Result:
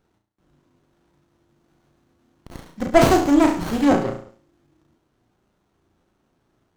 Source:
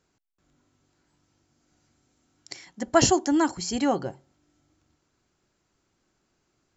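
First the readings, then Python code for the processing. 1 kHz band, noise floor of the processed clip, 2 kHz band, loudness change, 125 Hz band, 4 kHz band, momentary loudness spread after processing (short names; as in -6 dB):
+5.5 dB, -70 dBFS, +6.0 dB, +5.5 dB, +7.0 dB, -1.0 dB, 15 LU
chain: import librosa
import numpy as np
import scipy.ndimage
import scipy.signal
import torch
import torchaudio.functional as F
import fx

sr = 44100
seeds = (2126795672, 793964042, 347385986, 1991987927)

y = fx.room_flutter(x, sr, wall_m=6.0, rt60_s=0.48)
y = fx.buffer_crackle(y, sr, first_s=0.76, period_s=0.35, block=512, kind='repeat')
y = fx.running_max(y, sr, window=17)
y = F.gain(torch.from_numpy(y), 5.0).numpy()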